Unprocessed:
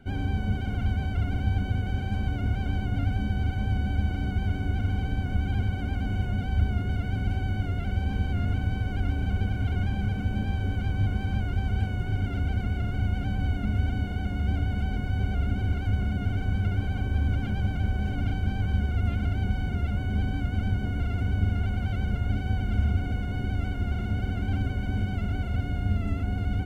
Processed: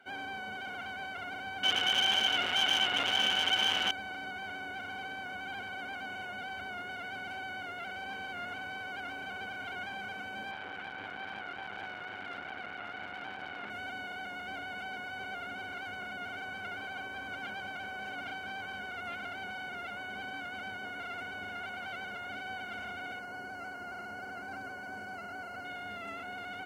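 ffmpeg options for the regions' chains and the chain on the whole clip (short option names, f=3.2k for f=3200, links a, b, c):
-filter_complex "[0:a]asettb=1/sr,asplit=3[a][b][c];[a]atrim=end=1.634[d];[b]atrim=start=1.63:end=3.91,asetpts=PTS-STARTPTS,afade=t=in:d=0.004:c=qsin,afade=t=out:st=2.276:d=0.004:c=qsin,lowpass=f=3.2k:t=q:w=12,asoftclip=type=hard:threshold=-26dB,acontrast=88[e];[c]atrim=start=3.906[f];[d][e]acrossfade=d=0.004:c1=hsin:c2=qsin[g];[g][f]acrossfade=d=0.004:c1=qsin:c2=hsin,asettb=1/sr,asplit=3[h][i][j];[h]atrim=end=10.514[k];[i]atrim=start=10.51:end=13.7,asetpts=PTS-STARTPTS,afade=t=in:d=0.004:c=qsin,afade=t=out:st=3.186:d=0.004:c=qsin,lowpass=f=4.1k:w=0.5412,lowpass=f=4.1k:w=1.3066,aeval=exprs='clip(val(0),-1,0.0237)':c=same[l];[j]atrim=start=13.696[m];[k][l]acrossfade=d=0.004:c1=hsin:c2=qsin[n];[n][m]acrossfade=d=0.004:c1=qsin:c2=hsin,asettb=1/sr,asplit=3[o][p][q];[o]atrim=end=23.194[r];[p]atrim=start=23.19:end=25.65,asetpts=PTS-STARTPTS,afade=t=in:d=0.004:c=qsin,afade=t=out:st=2.456:d=0.004:c=qsin,asuperstop=centerf=3400:order=12:qfactor=3.5,equalizer=f=2.4k:t=o:w=0.61:g=-9.5[s];[q]atrim=start=25.646[t];[r][s]acrossfade=d=0.004:c1=hsin:c2=qsin[u];[u][t]acrossfade=d=0.004:c1=qsin:c2=hsin,highpass=920,highshelf=f=2.4k:g=-8,volume=5.5dB"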